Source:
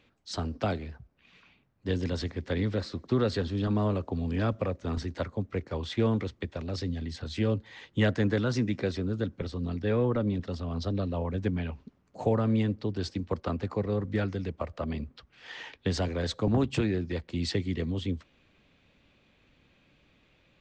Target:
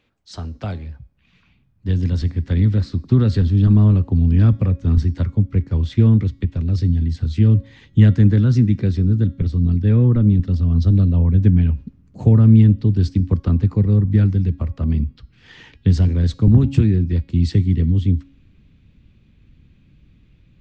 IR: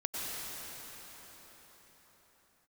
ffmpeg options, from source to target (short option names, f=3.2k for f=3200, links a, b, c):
-af "asubboost=boost=11:cutoff=190,bandreject=f=275.9:t=h:w=4,bandreject=f=551.8:t=h:w=4,bandreject=f=827.7:t=h:w=4,bandreject=f=1.1036k:t=h:w=4,bandreject=f=1.3795k:t=h:w=4,bandreject=f=1.6554k:t=h:w=4,bandreject=f=1.9313k:t=h:w=4,bandreject=f=2.2072k:t=h:w=4,bandreject=f=2.4831k:t=h:w=4,bandreject=f=2.759k:t=h:w=4,bandreject=f=3.0349k:t=h:w=4,bandreject=f=3.3108k:t=h:w=4,bandreject=f=3.5867k:t=h:w=4,bandreject=f=3.8626k:t=h:w=4,bandreject=f=4.1385k:t=h:w=4,bandreject=f=4.4144k:t=h:w=4,bandreject=f=4.6903k:t=h:w=4,bandreject=f=4.9662k:t=h:w=4,bandreject=f=5.2421k:t=h:w=4,bandreject=f=5.518k:t=h:w=4,bandreject=f=5.7939k:t=h:w=4,bandreject=f=6.0698k:t=h:w=4,bandreject=f=6.3457k:t=h:w=4,bandreject=f=6.6216k:t=h:w=4,bandreject=f=6.8975k:t=h:w=4,bandreject=f=7.1734k:t=h:w=4,bandreject=f=7.4493k:t=h:w=4,bandreject=f=7.7252k:t=h:w=4,bandreject=f=8.0011k:t=h:w=4,bandreject=f=8.277k:t=h:w=4,bandreject=f=8.5529k:t=h:w=4,bandreject=f=8.8288k:t=h:w=4,dynaudnorm=f=300:g=17:m=11.5dB,volume=-1dB"